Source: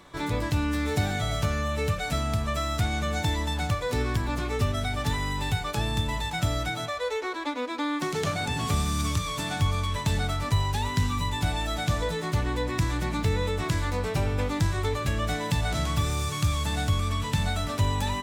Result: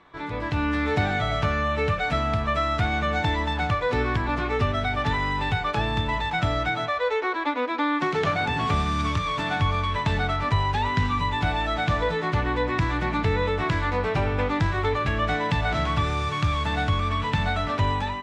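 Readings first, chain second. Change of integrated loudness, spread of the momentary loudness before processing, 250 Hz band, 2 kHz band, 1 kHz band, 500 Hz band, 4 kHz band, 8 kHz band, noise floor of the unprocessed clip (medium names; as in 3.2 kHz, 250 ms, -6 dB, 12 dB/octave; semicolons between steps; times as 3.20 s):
+3.0 dB, 2 LU, +2.5 dB, +6.0 dB, +6.5 dB, +4.5 dB, +0.5 dB, -11.0 dB, -33 dBFS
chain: bass shelf 370 Hz -8 dB; level rider gain up to 8 dB; low-pass 2.5 kHz 12 dB/octave; band-stop 560 Hz, Q 16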